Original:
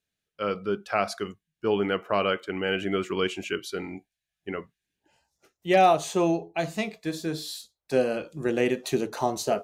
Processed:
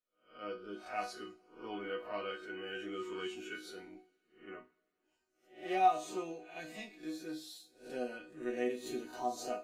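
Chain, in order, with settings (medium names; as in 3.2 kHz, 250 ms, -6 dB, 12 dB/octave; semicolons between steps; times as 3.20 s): reverse spectral sustain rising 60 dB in 0.42 s; chord resonator B3 major, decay 0.24 s; two-slope reverb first 0.53 s, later 3.1 s, from -19 dB, DRR 15 dB; trim +1 dB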